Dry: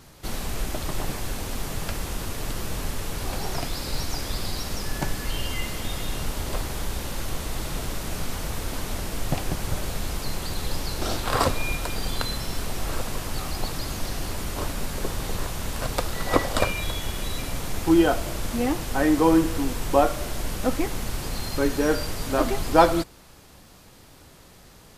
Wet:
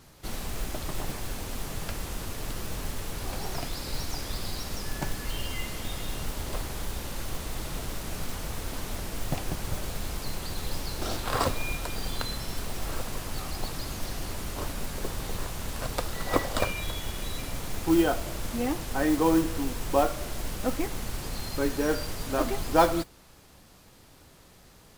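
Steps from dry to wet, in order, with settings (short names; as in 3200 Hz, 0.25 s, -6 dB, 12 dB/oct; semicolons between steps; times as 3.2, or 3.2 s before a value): modulation noise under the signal 20 dB; gain -4.5 dB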